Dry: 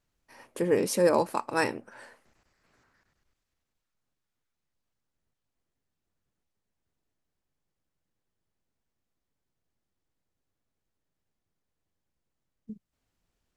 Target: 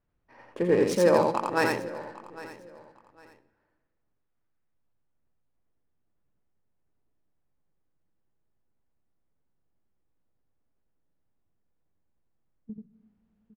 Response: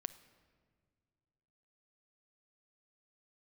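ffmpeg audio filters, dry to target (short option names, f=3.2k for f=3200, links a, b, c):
-filter_complex "[0:a]adynamicsmooth=sensitivity=6.5:basefreq=2k,aecho=1:1:805|1610:0.133|0.0333,asplit=2[a][b];[1:a]atrim=start_sample=2205,highshelf=f=8.5k:g=7.5,adelay=85[c];[b][c]afir=irnorm=-1:irlink=0,volume=-0.5dB[d];[a][d]amix=inputs=2:normalize=0,volume=1dB"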